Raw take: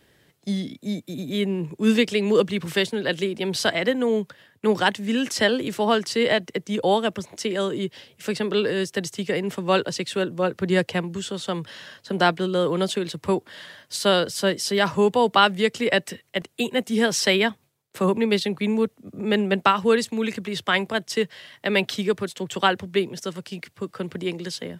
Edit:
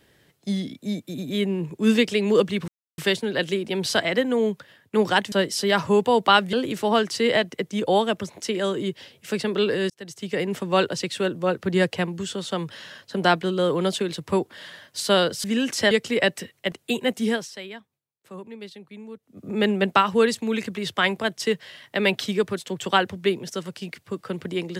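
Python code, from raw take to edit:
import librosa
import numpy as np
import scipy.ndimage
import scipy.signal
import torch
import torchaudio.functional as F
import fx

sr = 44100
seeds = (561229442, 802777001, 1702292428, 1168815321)

y = fx.edit(x, sr, fx.insert_silence(at_s=2.68, length_s=0.3),
    fx.swap(start_s=5.02, length_s=0.47, other_s=14.4, other_length_s=1.21),
    fx.fade_in_span(start_s=8.86, length_s=0.53),
    fx.fade_down_up(start_s=16.93, length_s=2.24, db=-18.0, fade_s=0.25), tone=tone)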